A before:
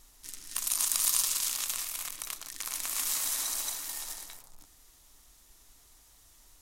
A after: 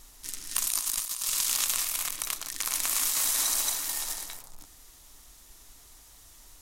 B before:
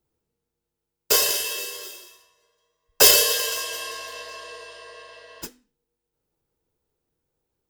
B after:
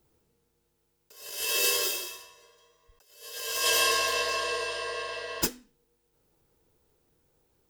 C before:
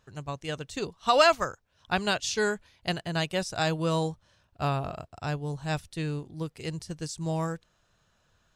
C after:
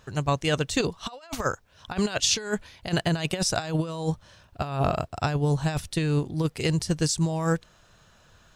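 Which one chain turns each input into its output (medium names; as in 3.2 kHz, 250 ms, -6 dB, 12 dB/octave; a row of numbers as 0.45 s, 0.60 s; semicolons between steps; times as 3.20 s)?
compressor with a negative ratio -32 dBFS, ratio -0.5; normalise loudness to -27 LUFS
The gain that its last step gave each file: +4.5 dB, +1.5 dB, +7.0 dB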